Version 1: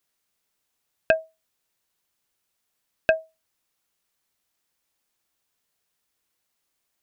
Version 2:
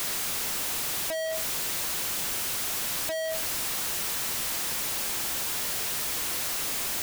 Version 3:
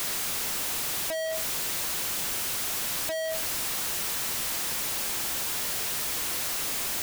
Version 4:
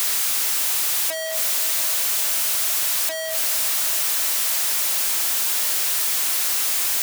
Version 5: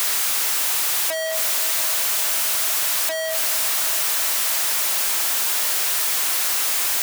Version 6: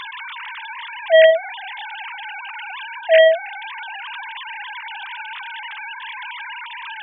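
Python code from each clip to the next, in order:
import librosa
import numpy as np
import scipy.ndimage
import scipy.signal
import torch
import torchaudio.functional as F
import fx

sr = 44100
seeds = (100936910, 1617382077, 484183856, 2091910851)

y1 = np.sign(x) * np.sqrt(np.mean(np.square(x)))
y1 = F.gain(torch.from_numpy(y1), 5.5).numpy()
y2 = y1
y3 = fx.highpass(y2, sr, hz=880.0, slope=6)
y3 = fx.high_shelf(y3, sr, hz=5000.0, db=4.5)
y3 = fx.echo_bbd(y3, sr, ms=338, stages=4096, feedback_pct=84, wet_db=-15)
y3 = F.gain(torch.from_numpy(y3), 5.5).numpy()
y4 = fx.peak_eq(y3, sr, hz=1000.0, db=4.0, octaves=2.8)
y5 = fx.sine_speech(y4, sr)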